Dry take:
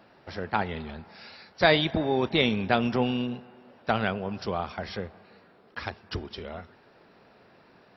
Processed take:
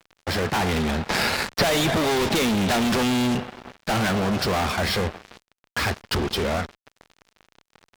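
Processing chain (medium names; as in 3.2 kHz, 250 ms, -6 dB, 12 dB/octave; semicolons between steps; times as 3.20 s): fuzz box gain 43 dB, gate -49 dBFS; 1.09–3.35 s: three bands compressed up and down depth 100%; trim -7.5 dB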